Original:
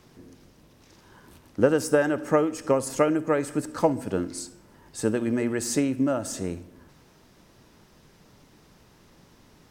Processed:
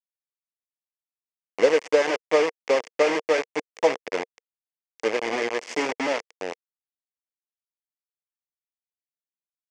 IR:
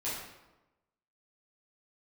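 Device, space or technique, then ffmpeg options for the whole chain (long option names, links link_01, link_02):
hand-held game console: -af "acrusher=bits=3:mix=0:aa=0.000001,highpass=440,equalizer=frequency=470:width_type=q:width=4:gain=7,equalizer=frequency=1400:width_type=q:width=4:gain=-7,equalizer=frequency=2100:width_type=q:width=4:gain=7,equalizer=frequency=3900:width_type=q:width=4:gain=-10,lowpass=frequency=5900:width=0.5412,lowpass=frequency=5900:width=1.3066"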